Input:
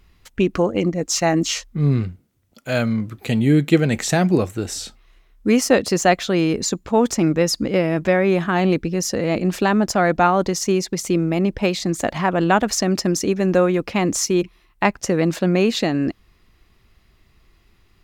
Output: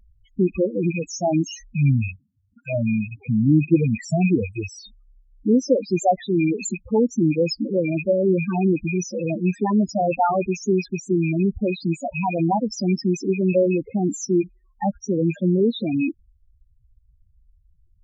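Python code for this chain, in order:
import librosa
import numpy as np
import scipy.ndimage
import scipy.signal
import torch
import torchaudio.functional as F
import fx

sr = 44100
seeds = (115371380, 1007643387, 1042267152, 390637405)

y = fx.rattle_buzz(x, sr, strikes_db=-30.0, level_db=-8.0)
y = fx.vibrato(y, sr, rate_hz=2.0, depth_cents=39.0)
y = fx.spec_topn(y, sr, count=4)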